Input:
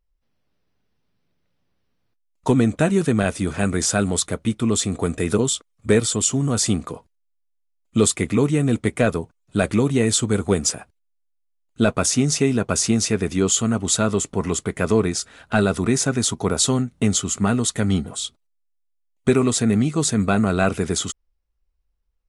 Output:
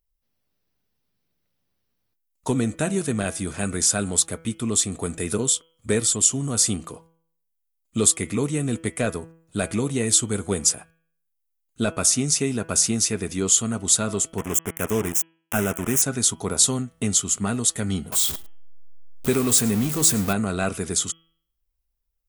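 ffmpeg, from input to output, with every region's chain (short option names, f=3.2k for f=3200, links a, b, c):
-filter_complex "[0:a]asettb=1/sr,asplit=3[a][b][c];[a]atrim=end=14.384[d];[b]atrim=start=14.38:end=16.02,asetpts=PTS-STARTPTS,afade=t=in:d=0.004:c=qsin,afade=t=out:st=1.636:d=0.004:c=qsin,acrusher=bits=3:mix=0:aa=0.5,acompressor=mode=upward:threshold=-25dB:ratio=2.5:attack=3.2:release=140:knee=2.83:detection=peak,asuperstop=centerf=4300:order=4:qfactor=1.6[e];[c]atrim=start=16.016[f];[d][e]acrossfade=d=0.004:c1=hsin:c2=qsin[g];[g][f]acrossfade=d=0.004:c1=qsin:c2=hsin,asettb=1/sr,asplit=3[h][i][j];[h]atrim=end=18.124[k];[i]atrim=start=18.12:end=20.33,asetpts=PTS-STARTPTS,afade=t=in:d=0.004:c=qsin,afade=t=out:st=2.206:d=0.004:c=qsin,aeval=exprs='val(0)+0.5*0.0668*sgn(val(0))':c=same,aecho=1:1:106:0.0944,atrim=end_sample=97461[l];[j]atrim=start=20.326[m];[k][l]acrossfade=d=0.004:c1=hsin:c2=qsin[n];[n][m]acrossfade=d=0.004:c1=qsin:c2=hsin,aemphasis=mode=production:type=50fm,bandreject=f=163.9:t=h:w=4,bandreject=f=327.8:t=h:w=4,bandreject=f=491.7:t=h:w=4,bandreject=f=655.6:t=h:w=4,bandreject=f=819.5:t=h:w=4,bandreject=f=983.4:t=h:w=4,bandreject=f=1.1473k:t=h:w=4,bandreject=f=1.3112k:t=h:w=4,bandreject=f=1.4751k:t=h:w=4,bandreject=f=1.639k:t=h:w=4,bandreject=f=1.8029k:t=h:w=4,bandreject=f=1.9668k:t=h:w=4,bandreject=f=2.1307k:t=h:w=4,bandreject=f=2.2946k:t=h:w=4,bandreject=f=2.4585k:t=h:w=4,bandreject=f=2.6224k:t=h:w=4,bandreject=f=2.7863k:t=h:w=4,bandreject=f=2.9502k:t=h:w=4,bandreject=f=3.1141k:t=h:w=4,bandreject=f=3.278k:t=h:w=4,volume=-5.5dB"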